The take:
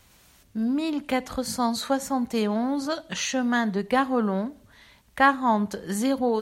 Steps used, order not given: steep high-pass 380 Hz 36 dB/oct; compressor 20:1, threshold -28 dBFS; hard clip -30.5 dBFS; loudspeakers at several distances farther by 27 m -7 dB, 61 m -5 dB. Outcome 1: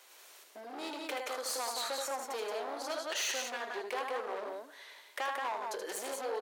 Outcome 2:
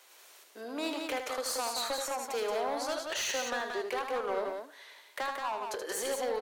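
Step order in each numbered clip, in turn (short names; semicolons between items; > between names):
compressor > loudspeakers at several distances > hard clip > steep high-pass; steep high-pass > compressor > hard clip > loudspeakers at several distances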